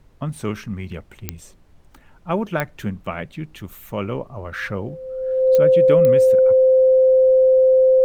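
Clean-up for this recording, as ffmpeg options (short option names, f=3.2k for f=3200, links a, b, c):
-af "adeclick=t=4,bandreject=f=520:w=30,agate=range=-21dB:threshold=-40dB"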